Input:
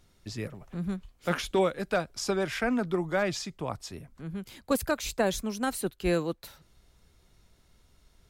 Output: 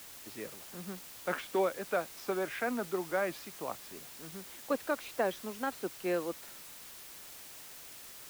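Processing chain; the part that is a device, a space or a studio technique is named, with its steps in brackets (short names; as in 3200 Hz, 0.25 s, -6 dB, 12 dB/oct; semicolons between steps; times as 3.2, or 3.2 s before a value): wax cylinder (BPF 310–2400 Hz; wow and flutter; white noise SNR 12 dB); gain -3.5 dB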